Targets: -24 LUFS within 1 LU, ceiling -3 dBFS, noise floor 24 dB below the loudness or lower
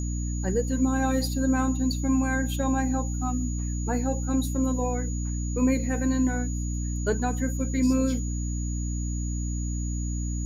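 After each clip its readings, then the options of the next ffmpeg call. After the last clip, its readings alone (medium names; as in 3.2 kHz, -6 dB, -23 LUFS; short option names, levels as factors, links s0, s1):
hum 60 Hz; highest harmonic 300 Hz; hum level -27 dBFS; steady tone 6.8 kHz; tone level -39 dBFS; loudness -27.0 LUFS; peak level -12.5 dBFS; loudness target -24.0 LUFS
-> -af "bandreject=f=60:t=h:w=6,bandreject=f=120:t=h:w=6,bandreject=f=180:t=h:w=6,bandreject=f=240:t=h:w=6,bandreject=f=300:t=h:w=6"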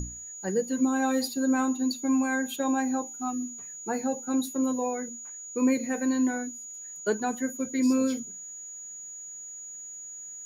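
hum not found; steady tone 6.8 kHz; tone level -39 dBFS
-> -af "bandreject=f=6800:w=30"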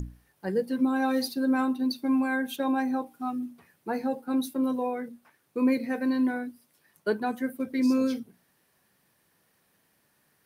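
steady tone not found; loudness -28.5 LUFS; peak level -15.0 dBFS; loudness target -24.0 LUFS
-> -af "volume=1.68"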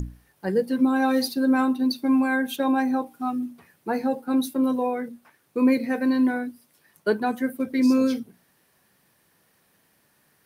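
loudness -24.0 LUFS; peak level -10.5 dBFS; noise floor -65 dBFS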